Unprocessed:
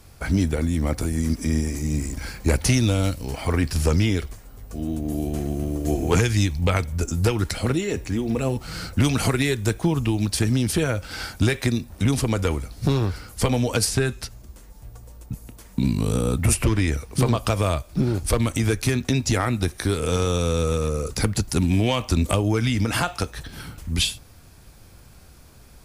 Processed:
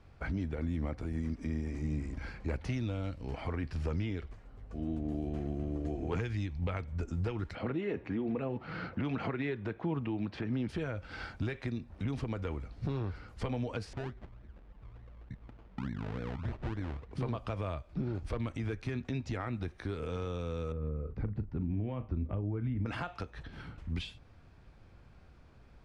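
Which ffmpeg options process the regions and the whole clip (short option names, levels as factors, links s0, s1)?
-filter_complex "[0:a]asettb=1/sr,asplit=3[s0][s1][s2];[s0]atrim=end=7.554[s3];[s1]atrim=start=7.55:end=10.69,asetpts=PTS-STARTPTS,afade=t=in:d=0.004:c=qsin,afade=t=out:st=3.136:d=0.004:c=qsin,highpass=150,lowpass=2800,acontrast=32[s4];[s2]atrim=start=10.686[s5];[s3][s4]acrossfade=d=0.004:c1=hsin:c2=qsin[s6];[s6][s5]acrossfade=d=0.004:c1=qsin:c2=hsin,asettb=1/sr,asplit=3[s7][s8][s9];[s7]atrim=end=13.934[s10];[s8]atrim=start=13.93:end=17.13,asetpts=PTS-STARTPTS,afade=t=in:d=0.004:c=qsin,afade=t=out:st=3.196:d=0.004:c=qsin,lowpass=f=2100:p=1,acrusher=samples=32:mix=1:aa=0.000001:lfo=1:lforange=19.2:lforate=3.4,acompressor=threshold=0.0126:ratio=1.5:attack=3.2:release=140:knee=1:detection=peak[s11];[s9]atrim=start=17.126[s12];[s10][s11]acrossfade=d=0.004:c1=hsin:c2=qsin[s13];[s13][s12]acrossfade=d=0.004:c1=qsin:c2=hsin,asettb=1/sr,asplit=3[s14][s15][s16];[s14]atrim=end=20.724[s17];[s15]atrim=start=20.72:end=22.86,asetpts=PTS-STARTPTS,afade=t=in:d=0.004:c=qsin,afade=t=out:st=2.136:d=0.004:c=qsin,lowpass=1100,equalizer=f=820:w=0.56:g=-8.5,asplit=2[s18][s19];[s19]adelay=39,volume=0.224[s20];[s18][s20]amix=inputs=2:normalize=0,atrim=end_sample=94374[s21];[s16]atrim=start=22.856[s22];[s17][s21]acrossfade=d=0.004:c1=hsin:c2=qsin[s23];[s23][s22]acrossfade=d=0.004:c1=qsin:c2=hsin,alimiter=limit=0.133:level=0:latency=1:release=230,lowpass=2600,volume=0.376"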